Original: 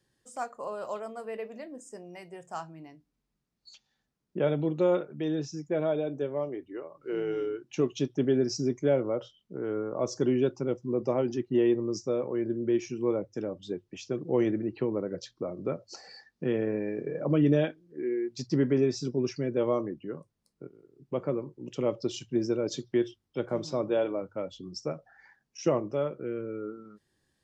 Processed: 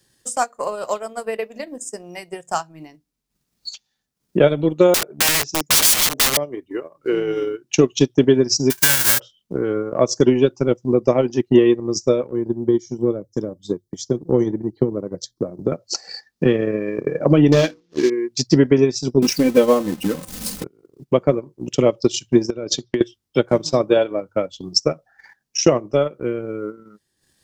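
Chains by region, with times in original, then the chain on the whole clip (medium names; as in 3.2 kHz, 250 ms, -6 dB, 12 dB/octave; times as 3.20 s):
4.94–6.37 s: high-pass 81 Hz 6 dB/octave + small resonant body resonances 400/620 Hz, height 10 dB, ringing for 20 ms + integer overflow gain 26.5 dB
8.70–9.18 s: formants flattened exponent 0.1 + compression, threshold -28 dBFS + small resonant body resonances 1.6 kHz, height 15 dB, ringing for 25 ms
12.27–15.72 s: Butterworth band-stop 2.6 kHz, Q 2.7 + peaking EQ 1.6 kHz -12.5 dB 2.8 oct
17.52–18.10 s: CVSD coder 32 kbps + hum notches 60/120/180/240/300/360/420/480 Hz + waveshaping leveller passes 1
19.22–20.64 s: jump at every zero crossing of -40 dBFS + peaking EQ 180 Hz +7 dB 0.51 oct + comb 3.9 ms, depth 81%
22.50–23.01 s: low-pass 5.9 kHz + compression 16:1, threshold -30 dBFS
whole clip: treble shelf 3.5 kHz +11 dB; transient shaper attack +8 dB, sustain -10 dB; loudness maximiser +9.5 dB; trim -1 dB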